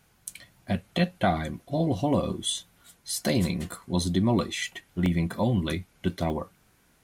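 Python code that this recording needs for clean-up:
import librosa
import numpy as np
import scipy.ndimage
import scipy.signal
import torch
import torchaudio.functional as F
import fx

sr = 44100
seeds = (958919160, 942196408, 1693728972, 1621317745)

y = fx.fix_interpolate(x, sr, at_s=(3.09, 5.06, 6.3), length_ms=1.2)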